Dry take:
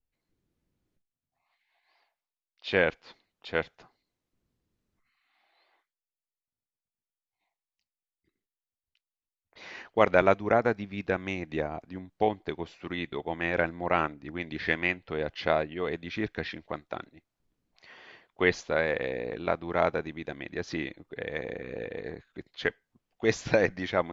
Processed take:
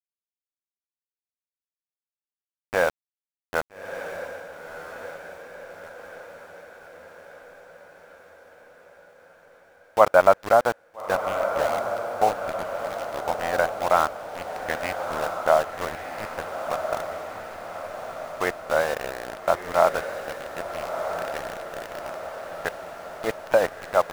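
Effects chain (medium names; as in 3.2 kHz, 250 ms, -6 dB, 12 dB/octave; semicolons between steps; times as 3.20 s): low-pass 3.4 kHz 12 dB/octave; high-order bell 890 Hz +13 dB; small samples zeroed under -22 dBFS; on a send: echo that smears into a reverb 1314 ms, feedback 60%, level -7.5 dB; on the sum: trim -5 dB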